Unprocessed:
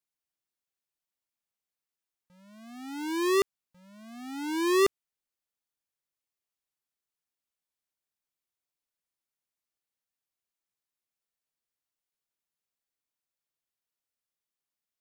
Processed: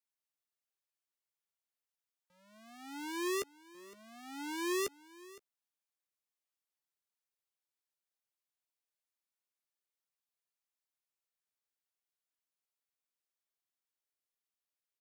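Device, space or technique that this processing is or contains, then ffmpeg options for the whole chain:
one-band saturation: -filter_complex "[0:a]bass=f=250:g=-14,treble=f=4k:g=0,acrossover=split=230|3500[a][b][c];[b]asoftclip=type=tanh:threshold=-29dB[d];[a][d][c]amix=inputs=3:normalize=0,asplit=2[e][f];[f]adelay=14,volume=-13dB[g];[e][g]amix=inputs=2:normalize=0,aecho=1:1:513:0.1,volume=-4.5dB"

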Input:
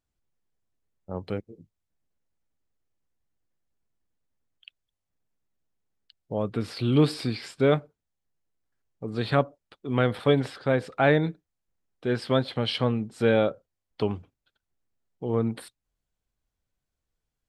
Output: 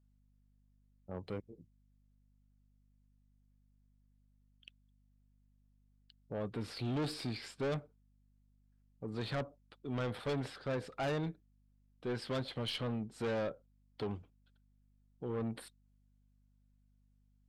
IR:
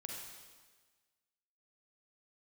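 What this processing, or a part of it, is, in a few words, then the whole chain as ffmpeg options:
valve amplifier with mains hum: -af "aeval=exprs='(tanh(17.8*val(0)+0.2)-tanh(0.2))/17.8':c=same,aeval=exprs='val(0)+0.000794*(sin(2*PI*50*n/s)+sin(2*PI*2*50*n/s)/2+sin(2*PI*3*50*n/s)/3+sin(2*PI*4*50*n/s)/4+sin(2*PI*5*50*n/s)/5)':c=same,volume=-7dB"

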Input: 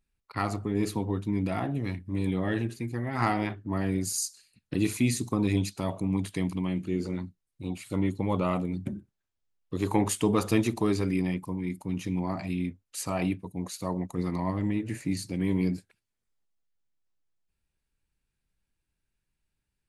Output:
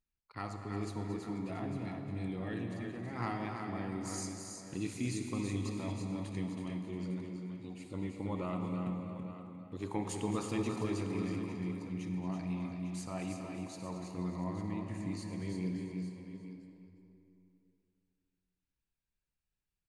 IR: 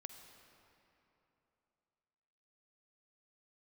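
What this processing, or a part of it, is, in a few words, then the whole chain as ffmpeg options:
cave: -filter_complex "[0:a]lowpass=f=9.2k:w=0.5412,lowpass=f=9.2k:w=1.3066,aecho=1:1:355:0.224[a];[1:a]atrim=start_sample=2205[b];[a][b]afir=irnorm=-1:irlink=0,aecho=1:1:227|327|595|853:0.251|0.501|0.133|0.237,volume=-6dB"

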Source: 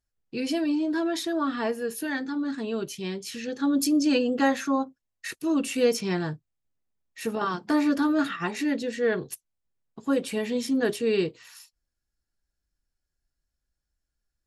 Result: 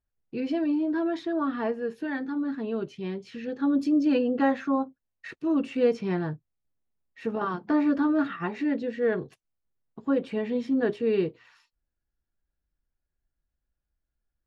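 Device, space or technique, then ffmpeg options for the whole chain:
phone in a pocket: -af "lowpass=3.5k,highshelf=f=2.4k:g=-10.5"

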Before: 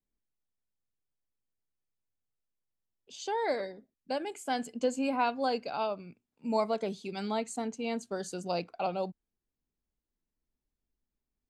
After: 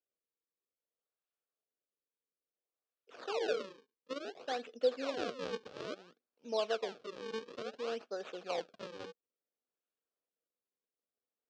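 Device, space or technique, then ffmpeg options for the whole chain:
circuit-bent sampling toy: -af "acrusher=samples=37:mix=1:aa=0.000001:lfo=1:lforange=59.2:lforate=0.58,highpass=470,equalizer=f=480:t=q:w=4:g=7,equalizer=f=920:t=q:w=4:g=-9,equalizer=f=2k:t=q:w=4:g=-9,lowpass=f=5.2k:w=0.5412,lowpass=f=5.2k:w=1.3066,volume=-3dB"

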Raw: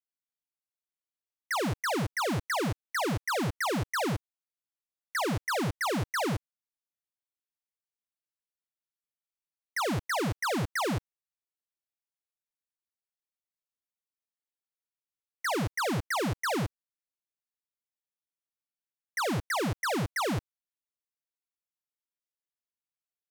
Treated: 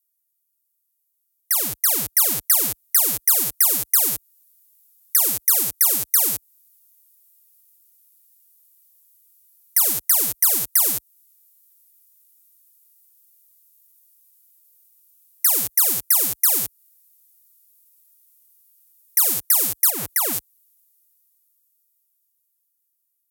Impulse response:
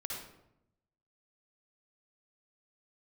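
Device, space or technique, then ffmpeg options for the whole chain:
FM broadcast chain: -filter_complex "[0:a]asettb=1/sr,asplit=3[a][b][c];[a]atrim=end=19.904[d];[b]atrim=start=19.9:end=20.33,asetpts=PTS-STARTPTS,afade=t=in:d=0.004:c=qsin,afade=t=out:st=0.426:d=0.004:c=qsin,acrossover=split=2500[e][f];[f]acompressor=threshold=-48dB:ratio=4:attack=1:release=60[g];[e][g]amix=inputs=2:normalize=0[h];[c]atrim=start=20.326[i];[d][h]acrossfade=d=0.004:c1=hsin:c2=qsin[j];[j][i]acrossfade=d=0.004:c1=qsin:c2=hsin,highpass=40,dynaudnorm=f=460:g=13:m=16.5dB,acrossover=split=310|750|5300[k][l][m][n];[k]acompressor=threshold=-28dB:ratio=4[o];[l]acompressor=threshold=-26dB:ratio=4[p];[m]acompressor=threshold=-26dB:ratio=4[q];[n]acompressor=threshold=-26dB:ratio=4[r];[o][p][q][r]amix=inputs=4:normalize=0,aemphasis=mode=production:type=75fm,alimiter=limit=-9dB:level=0:latency=1:release=203,asoftclip=type=hard:threshold=-11dB,lowpass=f=15k:w=0.5412,lowpass=f=15k:w=1.3066,aemphasis=mode=production:type=75fm,volume=-8dB"

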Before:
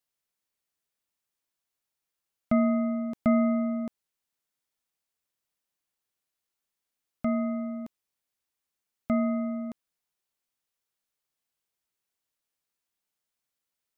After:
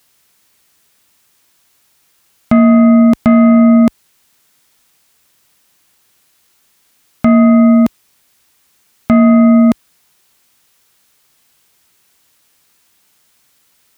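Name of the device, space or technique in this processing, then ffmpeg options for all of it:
mastering chain: -af "highpass=41,equalizer=f=570:t=o:w=1.1:g=-3.5,acompressor=threshold=-28dB:ratio=2.5,asoftclip=type=tanh:threshold=-20dB,alimiter=level_in=30.5dB:limit=-1dB:release=50:level=0:latency=1,volume=-1dB"

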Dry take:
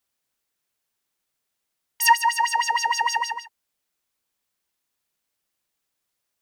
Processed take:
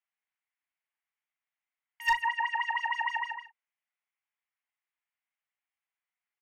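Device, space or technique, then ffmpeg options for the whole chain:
megaphone: -filter_complex "[0:a]firequalizer=gain_entry='entry(210,0);entry(300,-27);entry(690,-2);entry(1500,-4);entry(2200,-5);entry(3100,-4);entry(4600,-19);entry(7200,-6);entry(14000,7)':delay=0.05:min_phase=1,asettb=1/sr,asplit=3[a][b][c];[a]atrim=end=2.224[d];[b]atrim=start=2.22:end=2.81,asetpts=PTS-STARTPTS,afade=t=in:d=0.004:c=qsin,afade=t=out:st=0.586:d=0.004:c=qsin,acrossover=split=5900[e][f];[f]acompressor=threshold=-44dB:ratio=4:attack=1:release=60[g];[e][g]amix=inputs=2:normalize=0[h];[c]atrim=start=2.806[i];[d][h]acrossfade=d=0.004:c1=hsin:c2=qsin[j];[j][i]acrossfade=d=0.004:c1=qsin:c2=hsin,highpass=680,lowpass=3.2k,equalizer=f=2.1k:t=o:w=0.49:g=9.5,asoftclip=type=hard:threshold=-13.5dB,bandreject=f=60:t=h:w=6,bandreject=f=120:t=h:w=6,bandreject=f=180:t=h:w=6,bandreject=f=240:t=h:w=6,bandreject=f=300:t=h:w=6,bandreject=f=360:t=h:w=6,bandreject=f=420:t=h:w=6,bandreject=f=480:t=h:w=6,asplit=2[k][l];[l]adelay=38,volume=-9.5dB[m];[k][m]amix=inputs=2:normalize=0,volume=-6.5dB"

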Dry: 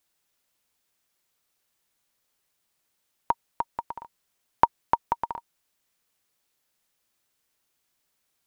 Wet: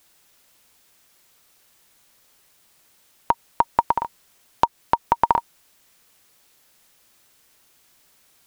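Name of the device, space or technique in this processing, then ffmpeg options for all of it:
loud club master: -af "acompressor=threshold=-22dB:ratio=2.5,asoftclip=type=hard:threshold=-8dB,alimiter=level_in=17.5dB:limit=-1dB:release=50:level=0:latency=1,volume=-1dB"

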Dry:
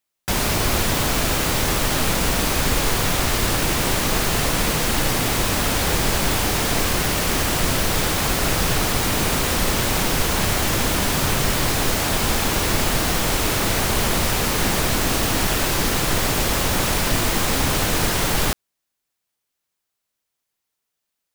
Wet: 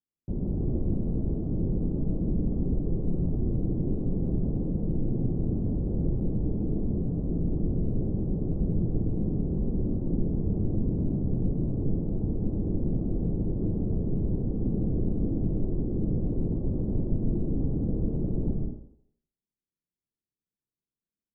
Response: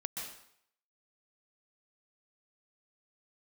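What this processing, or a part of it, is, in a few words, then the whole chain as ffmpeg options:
next room: -filter_complex "[0:a]asettb=1/sr,asplit=3[a][b][c];[a]atrim=end=1.334[d];[b]atrim=start=1.33:end=2.02,asetpts=PTS-STARTPTS,afade=t=in:d=0.004:c=qsin,afade=t=out:st=0.686:d=0.004:c=qsin,bandreject=f=1.8k:w=9.4[e];[c]atrim=start=2.016[f];[d][e]acrossfade=d=0.004:c1=hsin:c2=qsin[g];[g][f]acrossfade=d=0.004:c1=qsin:c2=hsin,lowpass=f=370:w=0.5412,lowpass=f=370:w=1.3066[h];[1:a]atrim=start_sample=2205[i];[h][i]afir=irnorm=-1:irlink=0,volume=-3dB"

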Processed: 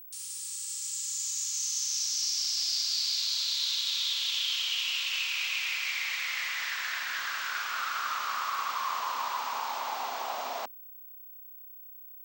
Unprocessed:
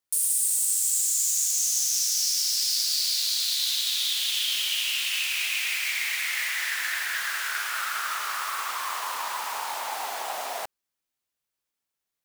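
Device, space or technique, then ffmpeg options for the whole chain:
old television with a line whistle: -af "highpass=f=170:w=0.5412,highpass=f=170:w=1.3066,equalizer=f=250:t=q:w=4:g=9,equalizer=f=1.1k:t=q:w=4:g=5,equalizer=f=1.8k:t=q:w=4:g=-4,lowpass=f=6.5k:w=0.5412,lowpass=f=6.5k:w=1.3066,aeval=exprs='val(0)+0.00794*sin(2*PI*15734*n/s)':c=same,volume=-3dB"

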